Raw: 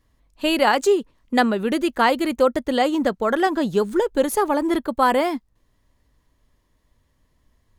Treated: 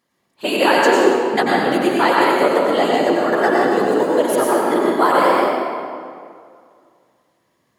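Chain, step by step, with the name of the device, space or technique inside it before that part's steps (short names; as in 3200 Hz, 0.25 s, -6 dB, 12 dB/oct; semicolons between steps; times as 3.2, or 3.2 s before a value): whispering ghost (whisperiser; HPF 300 Hz 12 dB/oct; reverb RT60 2.2 s, pre-delay 86 ms, DRR -4.5 dB); 2.98–4.19 notch 3300 Hz, Q 8.4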